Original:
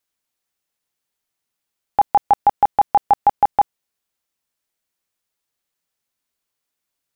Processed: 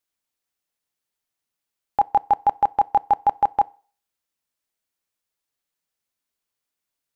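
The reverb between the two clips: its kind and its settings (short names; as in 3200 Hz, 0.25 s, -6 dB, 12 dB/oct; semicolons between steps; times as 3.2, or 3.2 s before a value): FDN reverb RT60 0.42 s, low-frequency decay 0.75×, high-frequency decay 0.9×, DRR 20 dB; gain -4 dB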